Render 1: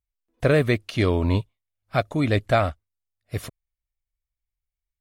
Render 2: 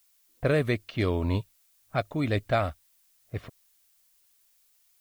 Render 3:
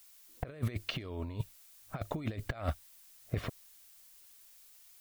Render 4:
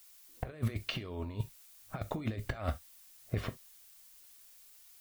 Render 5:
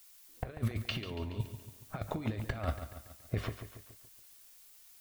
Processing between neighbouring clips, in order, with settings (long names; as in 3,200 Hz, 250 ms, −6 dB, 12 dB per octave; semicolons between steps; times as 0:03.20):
low-pass that shuts in the quiet parts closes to 1,100 Hz, open at −16.5 dBFS; background noise blue −60 dBFS; level −5.5 dB
compressor whose output falls as the input rises −33 dBFS, ratio −0.5; level −1.5 dB
reverb whose tail is shaped and stops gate 90 ms falling, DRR 10 dB
feedback echo at a low word length 141 ms, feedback 55%, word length 10 bits, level −10 dB